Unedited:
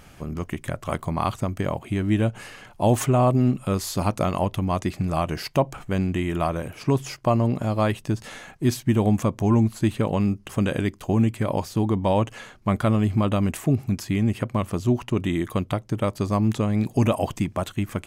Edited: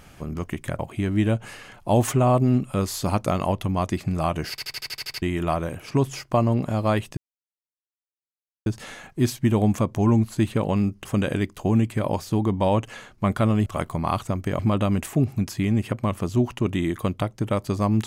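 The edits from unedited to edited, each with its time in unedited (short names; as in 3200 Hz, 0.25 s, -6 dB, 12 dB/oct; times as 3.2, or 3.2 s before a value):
0.79–1.72 move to 13.1
5.43 stutter in place 0.08 s, 9 plays
8.1 insert silence 1.49 s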